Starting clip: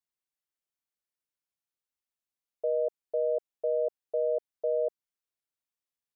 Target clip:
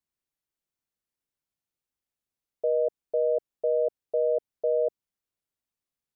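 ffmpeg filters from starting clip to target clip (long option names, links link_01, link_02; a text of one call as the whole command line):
ffmpeg -i in.wav -af "lowshelf=frequency=420:gain=9" out.wav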